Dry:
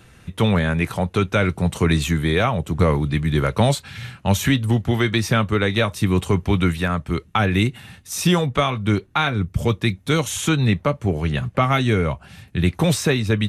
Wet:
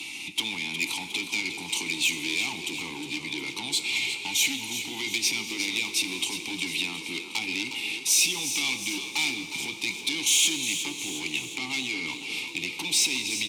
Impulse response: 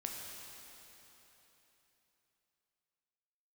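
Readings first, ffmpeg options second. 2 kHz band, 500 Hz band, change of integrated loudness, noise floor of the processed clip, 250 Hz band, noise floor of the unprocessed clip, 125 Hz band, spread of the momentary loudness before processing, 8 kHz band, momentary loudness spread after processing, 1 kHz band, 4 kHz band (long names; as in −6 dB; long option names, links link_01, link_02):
−2.5 dB, −21.5 dB, −6.0 dB, −39 dBFS, −16.0 dB, −50 dBFS, −30.0 dB, 5 LU, +6.0 dB, 9 LU, −17.0 dB, +2.5 dB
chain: -filter_complex "[0:a]acrossover=split=340[link_01][link_02];[link_02]acompressor=threshold=-20dB:ratio=6[link_03];[link_01][link_03]amix=inputs=2:normalize=0,lowshelf=frequency=450:gain=6,alimiter=limit=-14dB:level=0:latency=1:release=30,acompressor=threshold=-40dB:ratio=2,asplit=3[link_04][link_05][link_06];[link_04]bandpass=frequency=300:width_type=q:width=8,volume=0dB[link_07];[link_05]bandpass=frequency=870:width_type=q:width=8,volume=-6dB[link_08];[link_06]bandpass=frequency=2240:width_type=q:width=8,volume=-9dB[link_09];[link_07][link_08][link_09]amix=inputs=3:normalize=0,aemphasis=mode=production:type=75kf,asplit=2[link_10][link_11];[link_11]highpass=frequency=720:poles=1,volume=20dB,asoftclip=type=tanh:threshold=-33dB[link_12];[link_10][link_12]amix=inputs=2:normalize=0,lowpass=frequency=5600:poles=1,volume=-6dB,aexciter=amount=11.6:drive=4.5:freq=2400,asplit=8[link_13][link_14][link_15][link_16][link_17][link_18][link_19][link_20];[link_14]adelay=360,afreqshift=36,volume=-10dB[link_21];[link_15]adelay=720,afreqshift=72,volume=-14.9dB[link_22];[link_16]adelay=1080,afreqshift=108,volume=-19.8dB[link_23];[link_17]adelay=1440,afreqshift=144,volume=-24.6dB[link_24];[link_18]adelay=1800,afreqshift=180,volume=-29.5dB[link_25];[link_19]adelay=2160,afreqshift=216,volume=-34.4dB[link_26];[link_20]adelay=2520,afreqshift=252,volume=-39.3dB[link_27];[link_13][link_21][link_22][link_23][link_24][link_25][link_26][link_27]amix=inputs=8:normalize=0,asplit=2[link_28][link_29];[1:a]atrim=start_sample=2205,asetrate=48510,aresample=44100[link_30];[link_29][link_30]afir=irnorm=-1:irlink=0,volume=-3dB[link_31];[link_28][link_31]amix=inputs=2:normalize=0"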